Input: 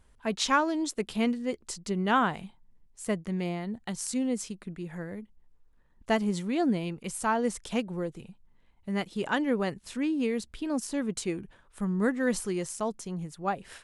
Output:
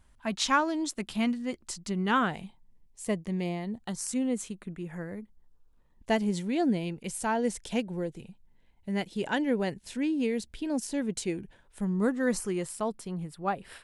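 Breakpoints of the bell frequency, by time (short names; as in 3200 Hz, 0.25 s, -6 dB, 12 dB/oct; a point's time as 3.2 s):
bell -12 dB 0.29 oct
1.98 s 450 Hz
2.4 s 1400 Hz
3.73 s 1400 Hz
4.17 s 5100 Hz
4.67 s 5100 Hz
6.17 s 1200 Hz
11.86 s 1200 Hz
12.7 s 6400 Hz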